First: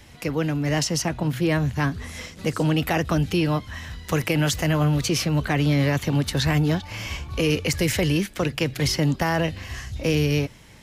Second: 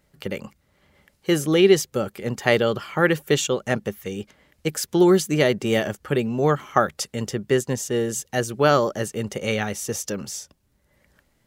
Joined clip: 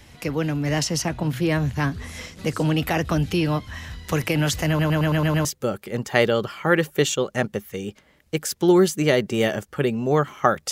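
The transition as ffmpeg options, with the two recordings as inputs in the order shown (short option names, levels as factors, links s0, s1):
-filter_complex "[0:a]apad=whole_dur=10.71,atrim=end=10.71,asplit=7[s0][s1][s2][s3][s4][s5][s6];[s0]atrim=end=4.792[s7];[s1]atrim=start=4.678:end=4.792[s8];[s2]atrim=start=4.678:end=4.792[s9];[s3]atrim=start=4.678:end=4.792[s10];[s4]atrim=start=4.678:end=4.792[s11];[s5]atrim=start=4.678:end=4.792[s12];[s6]atrim=start=4.678:end=4.792[s13];[1:a]atrim=start=1.768:end=7.03[s14];[s7][s8]acrossfade=d=0.004:c1=hsin:c2=hsin[s15];[s15][s9]acrossfade=d=0.004:c1=hsin:c2=hsin[s16];[s16][s10]acrossfade=d=0.004:c1=hsin:c2=hsin[s17];[s17][s11]acrossfade=d=0.004:c1=hsin:c2=hsin[s18];[s18][s12]acrossfade=d=0.004:c1=hsin:c2=hsin[s19];[s19][s13]acrossfade=d=0.004:c1=hsin:c2=hsin[s20];[s20][s14]acrossfade=d=0.004:c1=hsin:c2=hsin"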